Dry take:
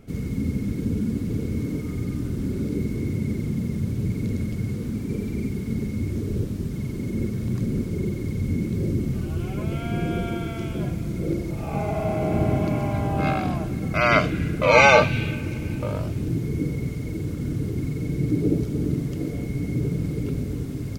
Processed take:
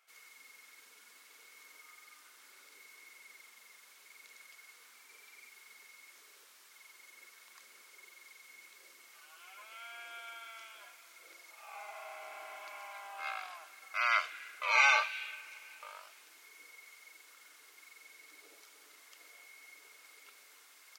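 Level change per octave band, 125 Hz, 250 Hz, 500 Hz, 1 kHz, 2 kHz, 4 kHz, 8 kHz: under -40 dB, under -40 dB, -27.5 dB, -12.5 dB, -8.5 dB, -8.5 dB, -8.5 dB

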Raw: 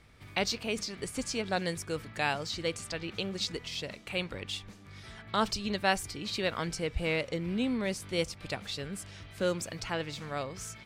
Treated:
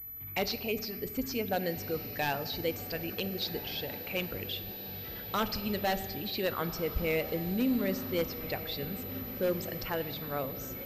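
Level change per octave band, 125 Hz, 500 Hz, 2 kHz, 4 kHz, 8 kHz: 0.0 dB, +1.0 dB, -3.0 dB, -2.5 dB, -8.0 dB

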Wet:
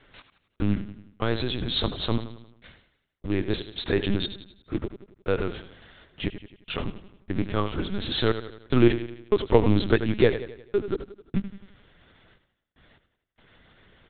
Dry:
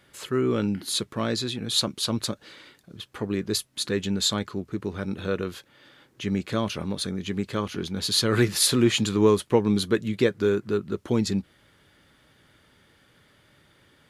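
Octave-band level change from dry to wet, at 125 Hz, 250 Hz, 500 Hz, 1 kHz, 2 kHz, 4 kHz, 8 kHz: 0.0 dB, -2.0 dB, -0.5 dB, -1.0 dB, -0.5 dB, -5.5 dB, under -40 dB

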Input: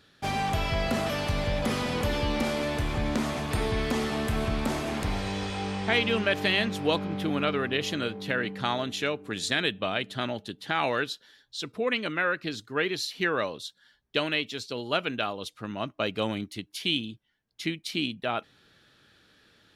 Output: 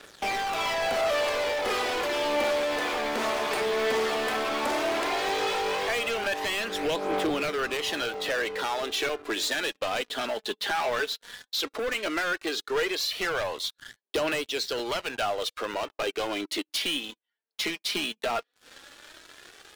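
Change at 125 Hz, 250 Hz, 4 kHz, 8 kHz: -16.0 dB, -5.5 dB, +1.5 dB, +5.0 dB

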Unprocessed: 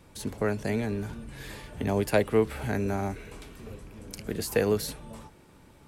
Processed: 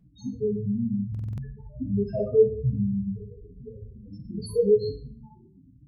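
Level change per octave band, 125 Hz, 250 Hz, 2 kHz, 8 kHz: +3.5 dB, +2.5 dB, under -25 dB, under -10 dB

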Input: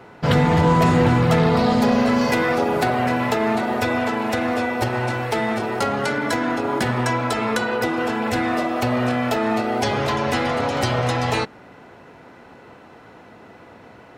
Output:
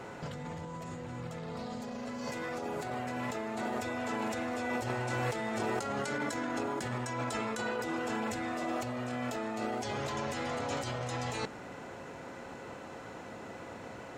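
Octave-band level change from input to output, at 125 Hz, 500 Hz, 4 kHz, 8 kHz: -18.5 dB, -15.0 dB, -15.0 dB, -9.5 dB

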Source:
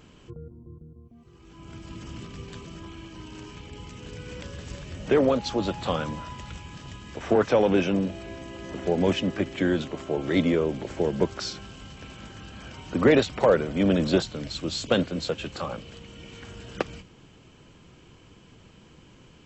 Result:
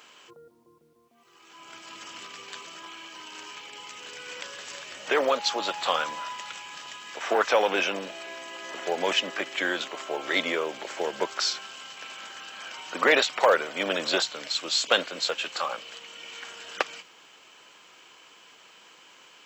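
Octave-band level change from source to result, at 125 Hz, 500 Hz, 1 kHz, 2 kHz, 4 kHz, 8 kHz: -22.5 dB, -3.5 dB, +4.5 dB, +6.5 dB, +7.0 dB, no reading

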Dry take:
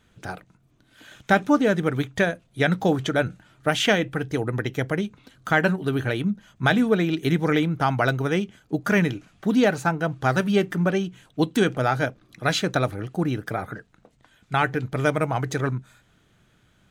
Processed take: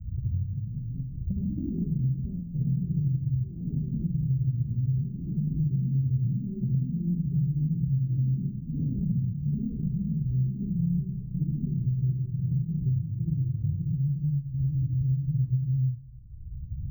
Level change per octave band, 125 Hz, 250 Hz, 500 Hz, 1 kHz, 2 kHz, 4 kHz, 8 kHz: +3.5 dB, -6.5 dB, under -25 dB, under -40 dB, under -40 dB, under -40 dB, under -40 dB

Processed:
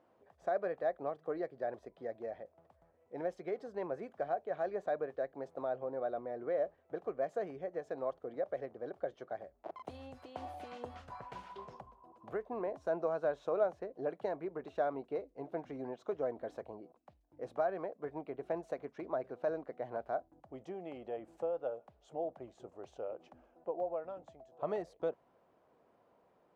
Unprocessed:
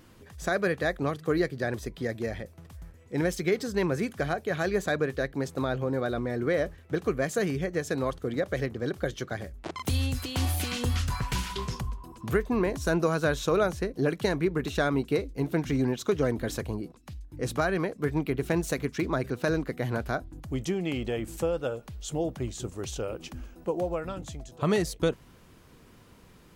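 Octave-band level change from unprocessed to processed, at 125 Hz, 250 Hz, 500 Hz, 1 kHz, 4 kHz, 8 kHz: -25.0 dB, -17.0 dB, -7.5 dB, -6.0 dB, under -25 dB, under -30 dB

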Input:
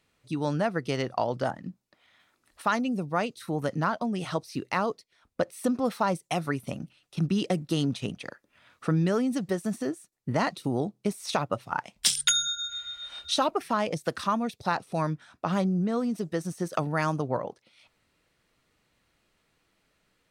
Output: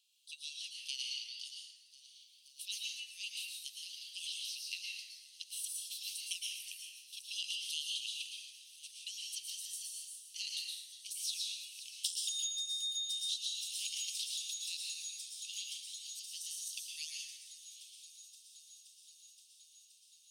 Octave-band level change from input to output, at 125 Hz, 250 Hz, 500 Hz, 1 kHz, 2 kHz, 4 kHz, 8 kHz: under -40 dB, under -40 dB, under -40 dB, under -40 dB, -14.0 dB, -3.5 dB, -4.0 dB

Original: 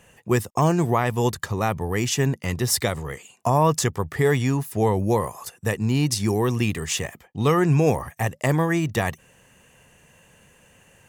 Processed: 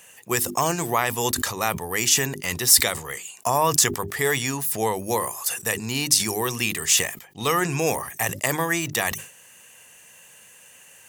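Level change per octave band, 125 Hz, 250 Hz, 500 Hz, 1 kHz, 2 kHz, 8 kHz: -9.5 dB, -6.5 dB, -3.5 dB, 0.0 dB, +4.0 dB, +9.5 dB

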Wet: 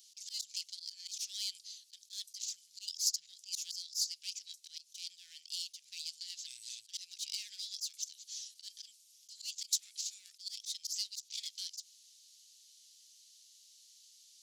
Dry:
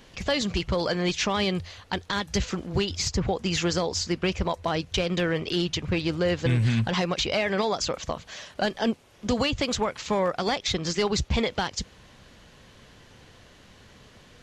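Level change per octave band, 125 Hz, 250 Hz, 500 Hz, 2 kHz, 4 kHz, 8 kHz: under -40 dB, under -40 dB, under -40 dB, -28.5 dB, -9.5 dB, -3.0 dB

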